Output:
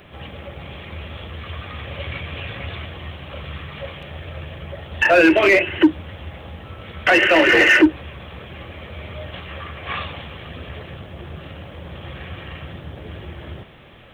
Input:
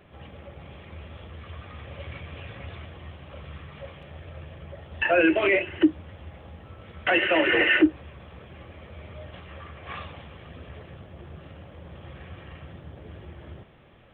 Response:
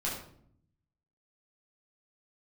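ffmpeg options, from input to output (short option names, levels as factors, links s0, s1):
-filter_complex "[0:a]acrossover=split=2500[s0][s1];[s1]acompressor=threshold=0.00794:ratio=4:attack=1:release=60[s2];[s0][s2]amix=inputs=2:normalize=0,highshelf=f=2600:g=9.5,asplit=2[s3][s4];[s4]aeval=exprs='0.119*(abs(mod(val(0)/0.119+3,4)-2)-1)':c=same,volume=0.335[s5];[s3][s5]amix=inputs=2:normalize=0,volume=1.88"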